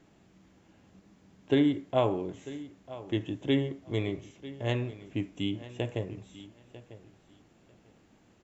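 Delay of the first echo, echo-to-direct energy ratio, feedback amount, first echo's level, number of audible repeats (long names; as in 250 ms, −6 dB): 946 ms, −16.5 dB, 18%, −16.5 dB, 2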